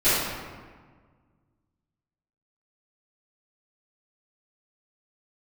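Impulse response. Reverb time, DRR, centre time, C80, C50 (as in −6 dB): 1.6 s, −19.0 dB, 106 ms, 0.5 dB, −2.5 dB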